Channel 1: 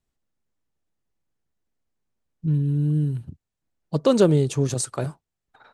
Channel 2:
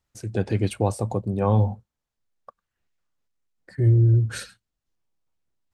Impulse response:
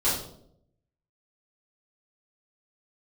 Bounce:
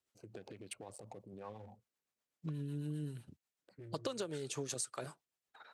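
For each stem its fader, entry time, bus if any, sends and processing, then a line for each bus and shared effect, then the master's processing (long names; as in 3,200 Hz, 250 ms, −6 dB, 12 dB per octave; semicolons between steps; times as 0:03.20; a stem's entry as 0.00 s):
+1.5 dB, 0.00 s, no send, no processing
−0.5 dB, 0.00 s, no send, adaptive Wiener filter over 25 samples; downward compressor, threshold −25 dBFS, peak gain reduction 10.5 dB; brickwall limiter −27.5 dBFS, peak gain reduction 11.5 dB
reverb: not used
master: high-pass filter 1,100 Hz 6 dB per octave; rotating-speaker cabinet horn 8 Hz; downward compressor 16 to 1, threshold −36 dBFS, peak gain reduction 16.5 dB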